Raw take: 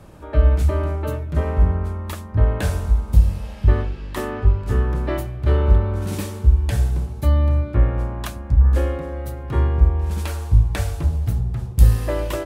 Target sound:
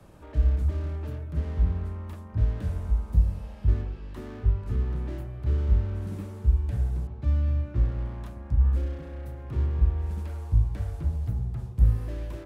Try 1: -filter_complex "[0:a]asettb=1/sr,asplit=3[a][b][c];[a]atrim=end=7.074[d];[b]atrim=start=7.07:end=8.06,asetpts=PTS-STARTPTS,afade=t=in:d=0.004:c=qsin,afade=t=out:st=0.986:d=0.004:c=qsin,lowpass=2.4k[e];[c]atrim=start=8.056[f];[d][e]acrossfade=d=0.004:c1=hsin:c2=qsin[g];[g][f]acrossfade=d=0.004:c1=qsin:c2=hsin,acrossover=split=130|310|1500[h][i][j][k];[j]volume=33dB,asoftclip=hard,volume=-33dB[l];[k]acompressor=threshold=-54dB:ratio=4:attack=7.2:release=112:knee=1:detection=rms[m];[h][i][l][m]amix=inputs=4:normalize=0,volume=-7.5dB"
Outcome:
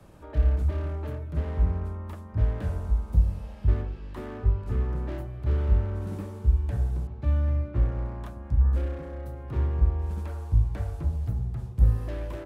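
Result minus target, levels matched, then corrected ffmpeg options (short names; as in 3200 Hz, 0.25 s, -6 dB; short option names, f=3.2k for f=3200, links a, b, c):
overloaded stage: distortion -4 dB
-filter_complex "[0:a]asettb=1/sr,asplit=3[a][b][c];[a]atrim=end=7.074[d];[b]atrim=start=7.07:end=8.06,asetpts=PTS-STARTPTS,afade=t=in:d=0.004:c=qsin,afade=t=out:st=0.986:d=0.004:c=qsin,lowpass=2.4k[e];[c]atrim=start=8.056[f];[d][e]acrossfade=d=0.004:c1=hsin:c2=qsin[g];[g][f]acrossfade=d=0.004:c1=qsin:c2=hsin,acrossover=split=130|310|1500[h][i][j][k];[j]volume=40.5dB,asoftclip=hard,volume=-40.5dB[l];[k]acompressor=threshold=-54dB:ratio=4:attack=7.2:release=112:knee=1:detection=rms[m];[h][i][l][m]amix=inputs=4:normalize=0,volume=-7.5dB"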